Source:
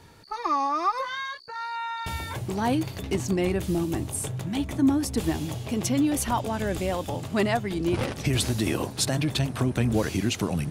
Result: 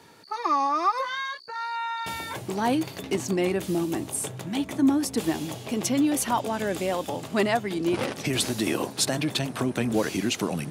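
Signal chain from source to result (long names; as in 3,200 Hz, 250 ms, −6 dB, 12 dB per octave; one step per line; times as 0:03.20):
high-pass filter 200 Hz 12 dB per octave
level +1.5 dB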